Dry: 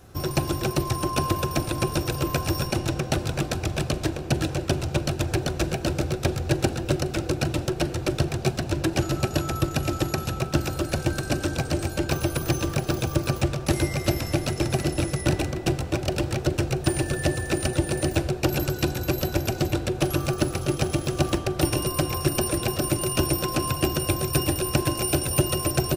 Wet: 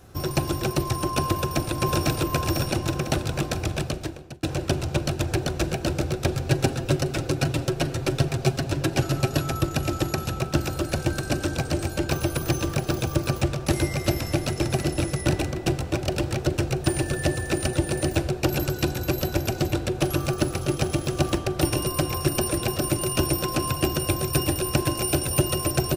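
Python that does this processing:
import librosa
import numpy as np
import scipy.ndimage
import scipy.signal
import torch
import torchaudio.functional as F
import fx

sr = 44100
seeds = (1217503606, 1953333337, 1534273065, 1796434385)

y = fx.echo_throw(x, sr, start_s=1.32, length_s=0.4, ms=500, feedback_pct=55, wet_db=-0.5)
y = fx.comb(y, sr, ms=7.4, depth=0.47, at=(6.34, 9.54))
y = fx.edit(y, sr, fx.fade_out_span(start_s=3.72, length_s=0.71), tone=tone)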